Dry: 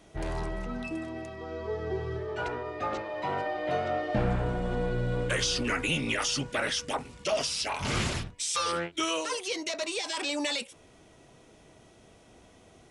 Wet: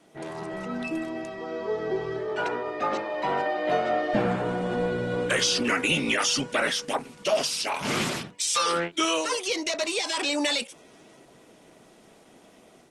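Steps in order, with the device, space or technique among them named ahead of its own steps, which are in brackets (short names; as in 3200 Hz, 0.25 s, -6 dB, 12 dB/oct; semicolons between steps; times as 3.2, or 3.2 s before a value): video call (HPF 160 Hz 24 dB/oct; AGC gain up to 5 dB; Opus 20 kbps 48000 Hz)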